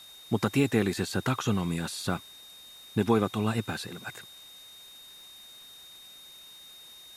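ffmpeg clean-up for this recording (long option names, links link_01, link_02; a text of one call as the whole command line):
ffmpeg -i in.wav -af "adeclick=threshold=4,bandreject=frequency=3700:width=30,afwtdn=0.002" out.wav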